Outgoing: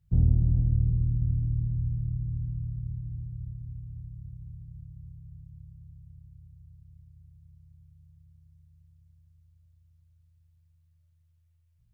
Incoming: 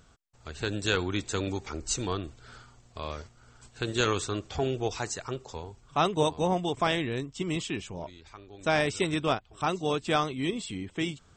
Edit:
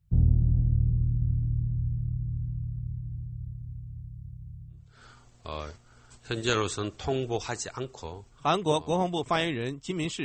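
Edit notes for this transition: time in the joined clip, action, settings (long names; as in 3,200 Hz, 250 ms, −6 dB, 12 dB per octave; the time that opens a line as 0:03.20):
outgoing
0:04.89: continue with incoming from 0:02.40, crossfade 0.48 s quadratic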